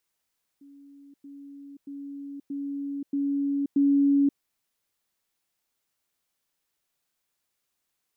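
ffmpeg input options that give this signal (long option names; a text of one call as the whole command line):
ffmpeg -f lavfi -i "aevalsrc='pow(10,(-47.5+6*floor(t/0.63))/20)*sin(2*PI*281*t)*clip(min(mod(t,0.63),0.53-mod(t,0.63))/0.005,0,1)':duration=3.78:sample_rate=44100" out.wav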